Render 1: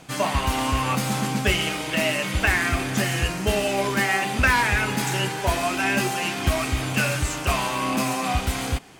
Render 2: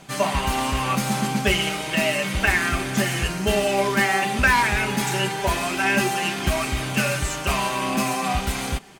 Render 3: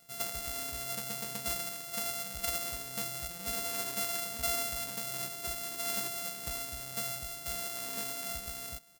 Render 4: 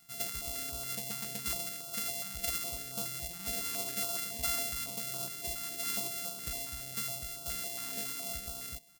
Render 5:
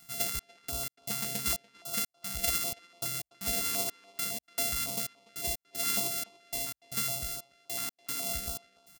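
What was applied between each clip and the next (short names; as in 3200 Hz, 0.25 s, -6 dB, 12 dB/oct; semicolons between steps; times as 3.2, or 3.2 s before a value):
comb 5.1 ms, depth 44%
sample sorter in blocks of 64 samples; pre-emphasis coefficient 0.8; gain -7.5 dB
stepped notch 7.2 Hz 550–1900 Hz
step gate "xxxx...xx..x" 154 bpm -60 dB; speakerphone echo 0.29 s, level -19 dB; gain +5 dB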